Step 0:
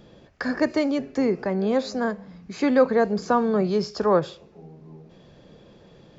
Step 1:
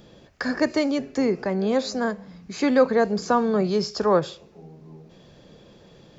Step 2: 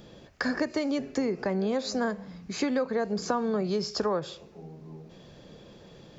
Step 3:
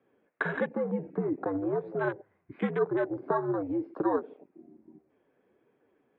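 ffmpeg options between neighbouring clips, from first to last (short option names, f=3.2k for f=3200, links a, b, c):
-af "highshelf=f=4.4k:g=8"
-af "acompressor=threshold=-24dB:ratio=12"
-af "flanger=delay=3.3:depth=5.8:regen=50:speed=1.4:shape=triangular,highpass=f=320:t=q:w=0.5412,highpass=f=320:t=q:w=1.307,lowpass=f=2.4k:t=q:w=0.5176,lowpass=f=2.4k:t=q:w=0.7071,lowpass=f=2.4k:t=q:w=1.932,afreqshift=-86,afwtdn=0.00794,volume=5dB"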